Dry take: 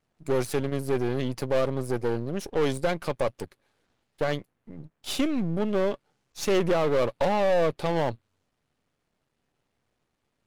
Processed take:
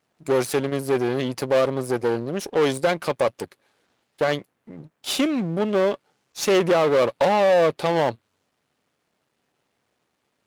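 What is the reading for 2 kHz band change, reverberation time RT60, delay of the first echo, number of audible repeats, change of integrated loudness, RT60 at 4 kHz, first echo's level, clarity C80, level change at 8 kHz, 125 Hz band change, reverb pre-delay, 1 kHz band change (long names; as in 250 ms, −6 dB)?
+6.5 dB, no reverb audible, no echo audible, no echo audible, +5.0 dB, no reverb audible, no echo audible, no reverb audible, +6.5 dB, +0.5 dB, no reverb audible, +6.0 dB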